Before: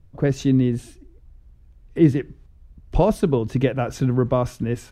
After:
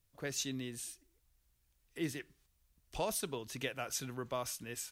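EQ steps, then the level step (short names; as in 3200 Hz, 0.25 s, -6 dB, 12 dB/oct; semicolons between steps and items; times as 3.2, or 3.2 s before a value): pre-emphasis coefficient 0.97; +3.0 dB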